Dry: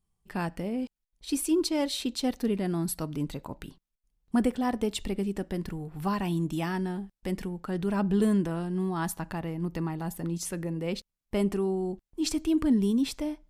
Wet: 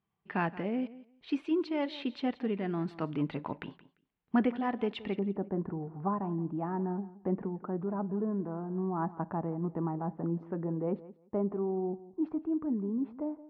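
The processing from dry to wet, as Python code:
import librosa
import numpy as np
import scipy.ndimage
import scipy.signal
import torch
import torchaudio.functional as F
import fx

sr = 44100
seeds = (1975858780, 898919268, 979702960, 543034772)

y = fx.lowpass(x, sr, hz=fx.steps((0.0, 2800.0), (5.19, 1100.0)), slope=24)
y = fx.rider(y, sr, range_db=5, speed_s=0.5)
y = scipy.signal.sosfilt(scipy.signal.butter(2, 140.0, 'highpass', fs=sr, output='sos'), y)
y = fx.low_shelf(y, sr, hz=480.0, db=-4.5)
y = fx.notch(y, sr, hz=530.0, q=15.0)
y = fx.echo_feedback(y, sr, ms=173, feedback_pct=17, wet_db=-17.5)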